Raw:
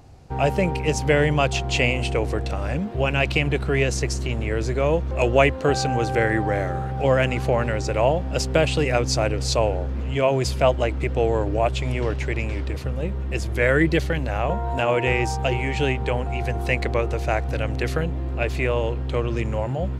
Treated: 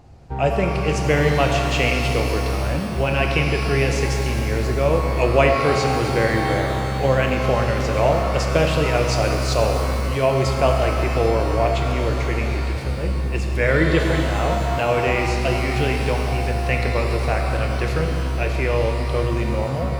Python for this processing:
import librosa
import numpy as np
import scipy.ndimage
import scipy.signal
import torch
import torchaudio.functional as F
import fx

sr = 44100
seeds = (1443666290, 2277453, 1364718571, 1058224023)

y = fx.high_shelf(x, sr, hz=5000.0, db=-6.0)
y = fx.rev_shimmer(y, sr, seeds[0], rt60_s=2.9, semitones=12, shimmer_db=-8, drr_db=2.0)